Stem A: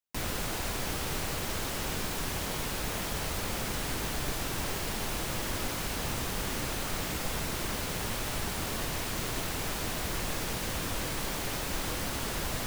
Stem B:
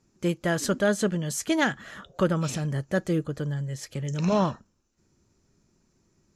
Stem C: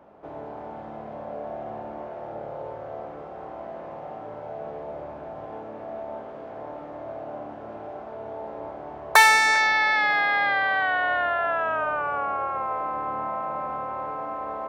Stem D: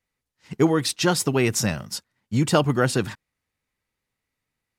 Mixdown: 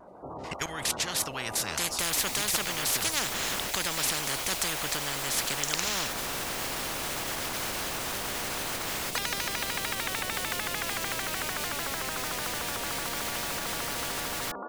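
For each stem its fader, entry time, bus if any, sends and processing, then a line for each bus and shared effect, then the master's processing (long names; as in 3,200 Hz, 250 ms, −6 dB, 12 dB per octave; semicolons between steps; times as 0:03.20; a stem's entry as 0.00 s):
−16.0 dB, 1.85 s, no send, brickwall limiter −24.5 dBFS, peak gain reduction 5 dB; envelope flattener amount 50%
+2.0 dB, 1.55 s, no send, no processing
−17.0 dB, 0.00 s, no send, gate on every frequency bin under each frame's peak −20 dB strong; automatic gain control gain up to 9.5 dB; pitch modulation by a square or saw wave square 6.7 Hz, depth 160 cents
−8.5 dB, 0.00 s, no send, low-pass filter 12,000 Hz 12 dB per octave; parametric band 61 Hz +11.5 dB 2.3 octaves; output level in coarse steps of 14 dB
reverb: not used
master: every bin compressed towards the loudest bin 10 to 1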